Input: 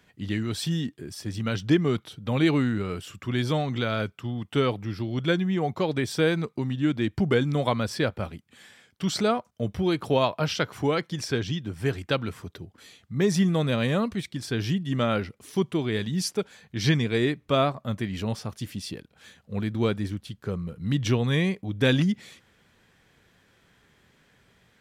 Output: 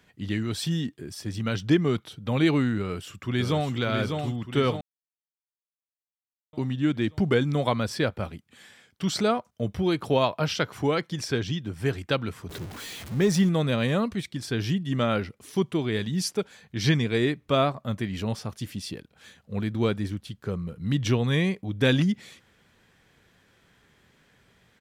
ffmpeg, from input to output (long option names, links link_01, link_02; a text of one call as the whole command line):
ffmpeg -i in.wav -filter_complex "[0:a]asplit=2[link_01][link_02];[link_02]afade=type=in:start_time=2.79:duration=0.01,afade=type=out:start_time=3.71:duration=0.01,aecho=0:1:600|1200|1800|2400|3000|3600|4200:0.562341|0.309288|0.170108|0.0935595|0.0514577|0.0283018|0.015566[link_03];[link_01][link_03]amix=inputs=2:normalize=0,asettb=1/sr,asplit=3[link_04][link_05][link_06];[link_04]atrim=end=12.494[link_07];[link_05]atrim=start=12.49:end=13.49,asetpts=PTS-STARTPTS,afade=type=in:duration=0.004:curve=qsin,afade=type=out:start_time=0.996:duration=0.004:curve=qsin,aeval=exprs='val(0)+0.5*0.0178*sgn(val(0))':channel_layout=same[link_08];[link_06]atrim=start=13.486[link_09];[link_07][link_08]acrossfade=duration=0.004:curve1=hsin:curve2=qsin[link_10];[link_10][link_09]acrossfade=duration=0.004:curve1=qsin:curve2=hsin,asplit=3[link_11][link_12][link_13];[link_11]atrim=end=4.81,asetpts=PTS-STARTPTS,afade=type=out:start_time=4.806:duration=0.004:curve=hsin[link_14];[link_12]atrim=start=4.81:end=6.53,asetpts=PTS-STARTPTS,volume=0[link_15];[link_13]atrim=start=6.53,asetpts=PTS-STARTPTS,afade=type=in:duration=0.004:curve=hsin[link_16];[link_14][link_15][link_16]concat=n=3:v=0:a=1" out.wav